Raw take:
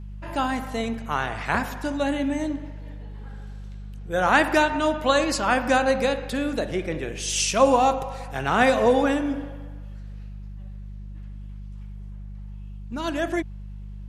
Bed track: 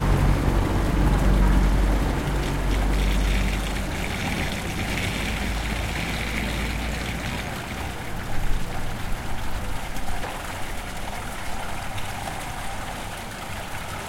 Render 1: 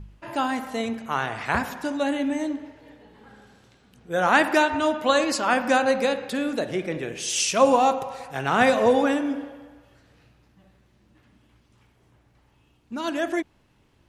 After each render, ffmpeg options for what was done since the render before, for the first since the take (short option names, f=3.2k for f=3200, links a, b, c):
-af "bandreject=f=50:t=h:w=4,bandreject=f=100:t=h:w=4,bandreject=f=150:t=h:w=4,bandreject=f=200:t=h:w=4"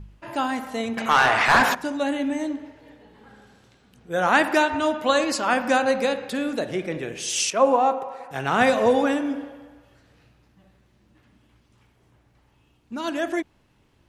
-filter_complex "[0:a]asettb=1/sr,asplit=3[a][b][c];[a]atrim=end=0.974[d];[b]atrim=start=0.97:end=1.75,asetpts=PTS-STARTPTS,afade=t=in:d=0.004:c=qsin,afade=t=out:st=0.776:d=0.004:c=qsin,asplit=2[e][f];[f]highpass=f=720:p=1,volume=23dB,asoftclip=type=tanh:threshold=-6.5dB[g];[e][g]amix=inputs=2:normalize=0,lowpass=f=4.4k:p=1,volume=-6dB[h];[c]atrim=start=1.746[i];[d][h]acrossfade=d=0.004:c1=hsin:c2=qsin[j];[j][i]acrossfade=d=0.004:c1=qsin:c2=hsin,asettb=1/sr,asplit=3[k][l][m];[k]atrim=end=7.504[n];[l]atrim=start=7.5:end=8.31,asetpts=PTS-STARTPTS,afade=t=in:d=0.004:c=qsin,afade=t=out:st=0.806:d=0.004:c=qsin,acrossover=split=220 2100:gain=0.1 1 0.224[o][p][q];[o][p][q]amix=inputs=3:normalize=0[r];[m]atrim=start=8.306[s];[n][r]acrossfade=d=0.004:c1=hsin:c2=qsin[t];[t][s]acrossfade=d=0.004:c1=qsin:c2=hsin"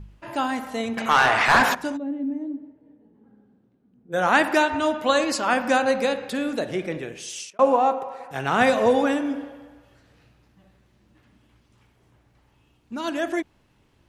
-filter_complex "[0:a]asplit=3[a][b][c];[a]afade=t=out:st=1.96:d=0.02[d];[b]bandpass=f=240:t=q:w=2,afade=t=in:st=1.96:d=0.02,afade=t=out:st=4.12:d=0.02[e];[c]afade=t=in:st=4.12:d=0.02[f];[d][e][f]amix=inputs=3:normalize=0,asplit=2[g][h];[g]atrim=end=7.59,asetpts=PTS-STARTPTS,afade=t=out:st=6.89:d=0.7[i];[h]atrim=start=7.59,asetpts=PTS-STARTPTS,afade=t=in:d=0.004:c=hsin[j];[i][j]concat=n=2:v=0:a=1"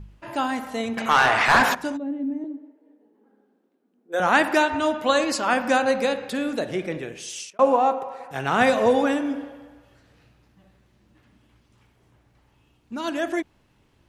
-filter_complex "[0:a]asettb=1/sr,asplit=3[a][b][c];[a]atrim=end=2.444[d];[b]atrim=start=2.44:end=4.2,asetpts=PTS-STARTPTS,afade=t=in:d=0.004:c=qsin,afade=t=out:st=1.756:d=0.004:c=qsin,highpass=f=290:w=0.5412,highpass=f=290:w=1.3066[e];[c]atrim=start=4.196[f];[d][e]acrossfade=d=0.004:c1=hsin:c2=qsin[g];[g][f]acrossfade=d=0.004:c1=qsin:c2=hsin"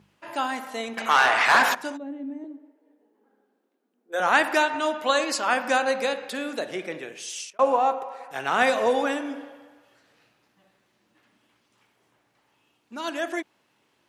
-af "highpass=170,lowshelf=f=330:g=-11"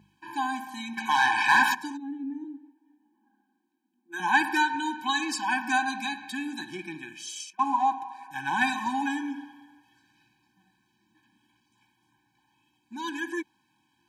-af "afftfilt=real='re*eq(mod(floor(b*sr/1024/370),2),0)':imag='im*eq(mod(floor(b*sr/1024/370),2),0)':win_size=1024:overlap=0.75"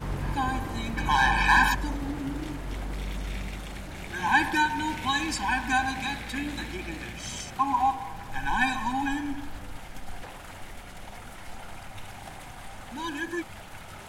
-filter_complex "[1:a]volume=-11.5dB[a];[0:a][a]amix=inputs=2:normalize=0"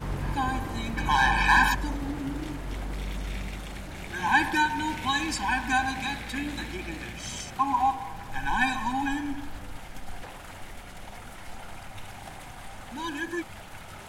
-af anull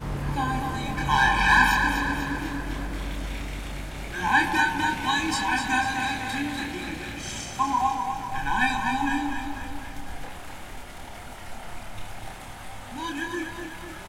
-filter_complex "[0:a]asplit=2[a][b];[b]adelay=28,volume=-4dB[c];[a][c]amix=inputs=2:normalize=0,asplit=2[d][e];[e]aecho=0:1:247|494|741|988|1235|1482|1729:0.473|0.265|0.148|0.0831|0.0465|0.0261|0.0146[f];[d][f]amix=inputs=2:normalize=0"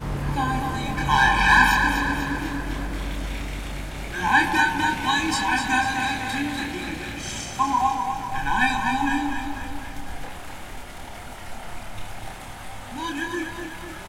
-af "volume=2.5dB"